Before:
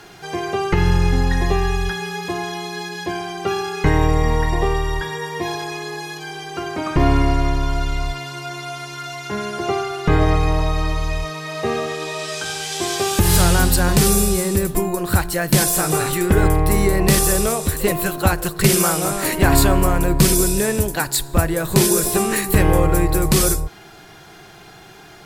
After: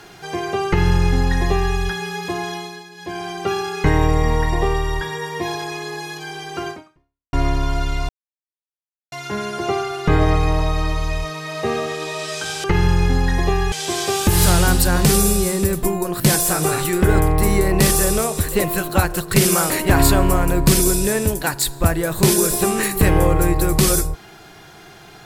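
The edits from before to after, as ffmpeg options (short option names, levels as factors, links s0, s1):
-filter_complex "[0:a]asplit=10[s0][s1][s2][s3][s4][s5][s6][s7][s8][s9];[s0]atrim=end=2.84,asetpts=PTS-STARTPTS,afade=t=out:st=2.53:d=0.31:silence=0.266073[s10];[s1]atrim=start=2.84:end=2.96,asetpts=PTS-STARTPTS,volume=0.266[s11];[s2]atrim=start=2.96:end=7.33,asetpts=PTS-STARTPTS,afade=t=in:d=0.31:silence=0.266073,afade=t=out:st=3.74:d=0.63:c=exp[s12];[s3]atrim=start=7.33:end=8.09,asetpts=PTS-STARTPTS,afade=t=in:d=0.004:c=hsin,afade=t=out:st=0.756:d=0.004:c=hsin[s13];[s4]atrim=start=8.09:end=9.12,asetpts=PTS-STARTPTS,volume=0[s14];[s5]atrim=start=9.12:end=12.642,asetpts=PTS-STARTPTS,afade=t=in:d=0.004:c=hsin[s15];[s6]atrim=start=0.668:end=1.752[s16];[s7]atrim=start=12.638:end=15.122[s17];[s8]atrim=start=15.478:end=18.982[s18];[s9]atrim=start=19.228[s19];[s10][s11][s12][s13][s14][s15]concat=n=6:v=0:a=1[s20];[s20][s16]acrossfade=d=0.004:c1=hsin:c2=hsin[s21];[s21][s17]acrossfade=d=0.004:c1=hsin:c2=hsin[s22];[s22][s18]acrossfade=d=0.004:c1=hsin:c2=hsin[s23];[s23][s19]acrossfade=d=0.004:c1=hsin:c2=hsin"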